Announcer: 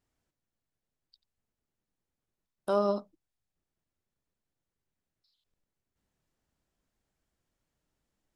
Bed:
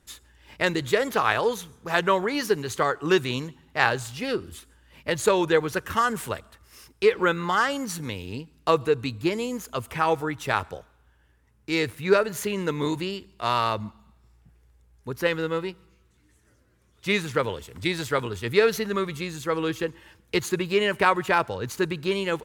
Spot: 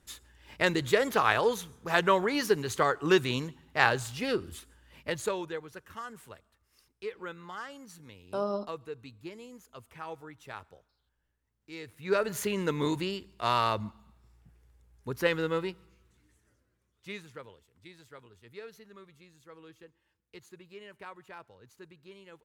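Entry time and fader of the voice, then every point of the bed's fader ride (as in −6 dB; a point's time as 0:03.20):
5.65 s, −4.5 dB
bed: 0:04.92 −2.5 dB
0:05.63 −18.5 dB
0:11.84 −18.5 dB
0:12.28 −3 dB
0:16.13 −3 dB
0:17.69 −25.5 dB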